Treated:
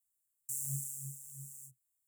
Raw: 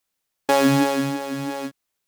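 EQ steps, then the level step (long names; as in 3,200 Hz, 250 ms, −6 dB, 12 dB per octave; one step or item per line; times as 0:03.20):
Chebyshev band-stop filter 130–7,500 Hz, order 5
high shelf with overshoot 4,600 Hz +6.5 dB, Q 3
−9.0 dB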